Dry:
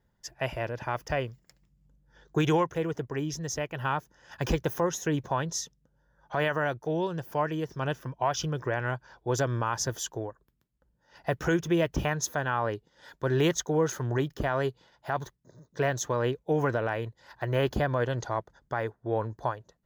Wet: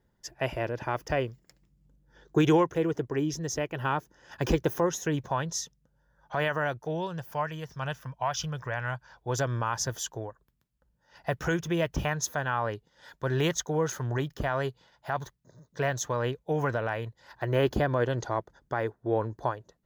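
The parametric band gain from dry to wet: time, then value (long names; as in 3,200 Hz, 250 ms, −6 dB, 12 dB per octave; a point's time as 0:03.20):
parametric band 340 Hz 0.98 octaves
0:04.65 +5 dB
0:05.26 −3.5 dB
0:06.80 −3.5 dB
0:07.54 −15 dB
0:08.87 −15 dB
0:09.40 −4.5 dB
0:17.05 −4.5 dB
0:17.52 +3.5 dB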